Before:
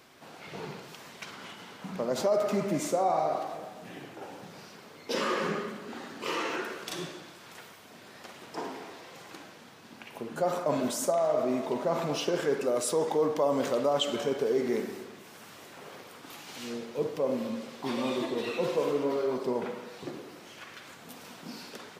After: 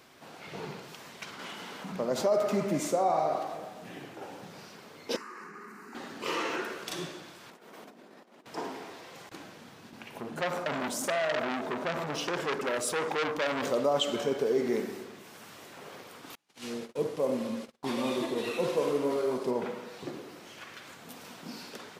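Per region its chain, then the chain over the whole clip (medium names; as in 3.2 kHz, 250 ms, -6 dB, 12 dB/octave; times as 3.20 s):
1.39–1.92 s: high-pass 160 Hz + level flattener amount 50%
5.16–5.95 s: static phaser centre 1.4 kHz, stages 4 + compression 16:1, threshold -40 dBFS + high-pass 270 Hz
7.50–8.46 s: high-pass 200 Hz 24 dB/octave + tilt shelf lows +7 dB, about 1.1 kHz + compressor with a negative ratio -52 dBFS, ratio -0.5
9.29–13.63 s: gate with hold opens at -38 dBFS, closes at -50 dBFS + bass shelf 300 Hz +5 dB + transformer saturation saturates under 2.7 kHz
16.35–19.51 s: CVSD coder 64 kbps + gate -42 dBFS, range -34 dB
whole clip: none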